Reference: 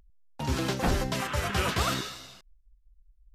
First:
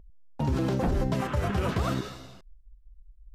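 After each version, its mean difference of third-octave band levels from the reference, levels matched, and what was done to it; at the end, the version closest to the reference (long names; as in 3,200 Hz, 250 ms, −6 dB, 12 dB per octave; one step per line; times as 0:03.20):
6.0 dB: tilt shelving filter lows +8 dB, about 1,100 Hz
brickwall limiter −18.5 dBFS, peak gain reduction 10 dB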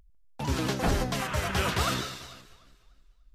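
1.5 dB: on a send: delay that swaps between a low-pass and a high-pass 148 ms, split 2,000 Hz, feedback 57%, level −13.5 dB
on the sum: pitch modulation by a square or saw wave saw down 4.5 Hz, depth 100 cents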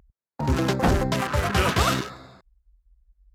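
4.0 dB: adaptive Wiener filter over 15 samples
high-pass filter 46 Hz
level +7 dB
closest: second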